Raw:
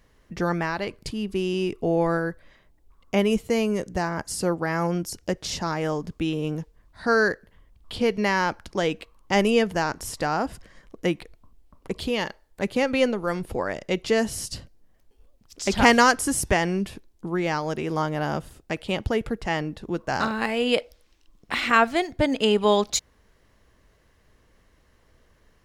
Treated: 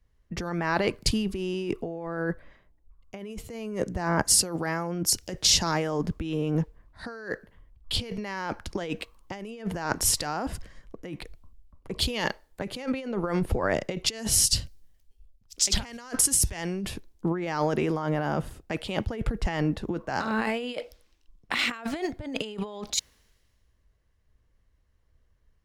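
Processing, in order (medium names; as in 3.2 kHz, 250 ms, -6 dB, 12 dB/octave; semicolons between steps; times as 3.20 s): compressor with a negative ratio -30 dBFS, ratio -1; three bands expanded up and down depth 70%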